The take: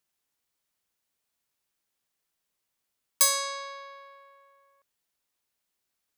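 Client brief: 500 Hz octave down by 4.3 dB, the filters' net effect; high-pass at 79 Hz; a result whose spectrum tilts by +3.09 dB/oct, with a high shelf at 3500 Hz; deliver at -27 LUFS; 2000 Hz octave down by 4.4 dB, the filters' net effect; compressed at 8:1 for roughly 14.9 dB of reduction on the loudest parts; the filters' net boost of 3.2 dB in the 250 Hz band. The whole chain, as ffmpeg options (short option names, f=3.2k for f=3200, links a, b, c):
-af "highpass=79,equalizer=f=250:t=o:g=6.5,equalizer=f=500:t=o:g=-5.5,equalizer=f=2k:t=o:g=-6.5,highshelf=f=3.5k:g=5,acompressor=threshold=-28dB:ratio=8,volume=8dB"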